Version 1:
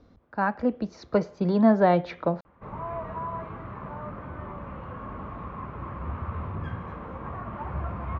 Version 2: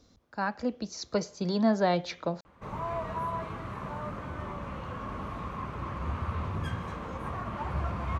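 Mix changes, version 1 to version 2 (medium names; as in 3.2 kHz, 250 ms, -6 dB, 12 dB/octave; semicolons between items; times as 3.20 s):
speech -6.0 dB; master: remove low-pass 1.9 kHz 12 dB/octave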